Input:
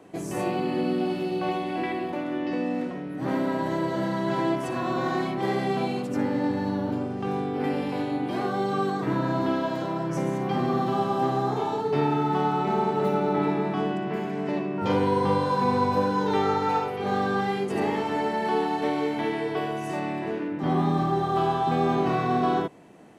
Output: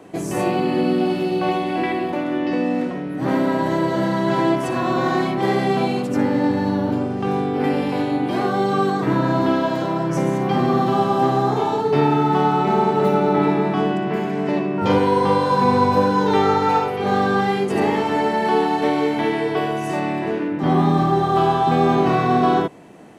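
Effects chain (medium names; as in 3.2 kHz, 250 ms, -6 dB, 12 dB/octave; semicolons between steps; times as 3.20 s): 14.98–15.51 s: bass shelf 140 Hz -8.5 dB; trim +7 dB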